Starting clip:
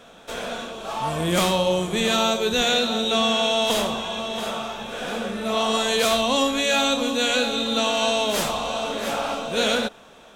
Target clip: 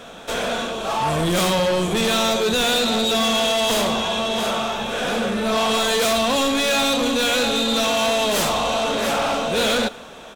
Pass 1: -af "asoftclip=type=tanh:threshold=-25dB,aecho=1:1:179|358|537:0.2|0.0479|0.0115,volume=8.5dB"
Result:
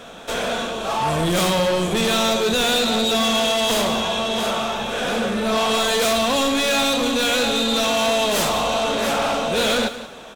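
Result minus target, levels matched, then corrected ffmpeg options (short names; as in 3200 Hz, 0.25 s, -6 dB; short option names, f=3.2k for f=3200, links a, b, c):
echo-to-direct +11 dB
-af "asoftclip=type=tanh:threshold=-25dB,aecho=1:1:179|358:0.0562|0.0135,volume=8.5dB"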